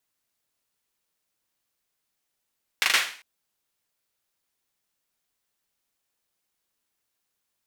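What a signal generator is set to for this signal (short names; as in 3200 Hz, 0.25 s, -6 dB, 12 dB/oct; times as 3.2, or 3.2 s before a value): hand clap length 0.40 s, bursts 4, apart 39 ms, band 2100 Hz, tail 0.44 s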